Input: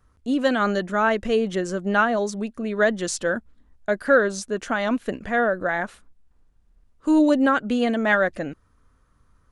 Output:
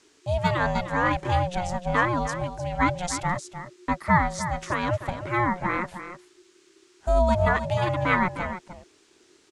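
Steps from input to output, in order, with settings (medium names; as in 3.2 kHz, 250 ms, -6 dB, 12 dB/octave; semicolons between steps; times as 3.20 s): delay 305 ms -11 dB; ring modulator 360 Hz; band noise 980–7900 Hz -63 dBFS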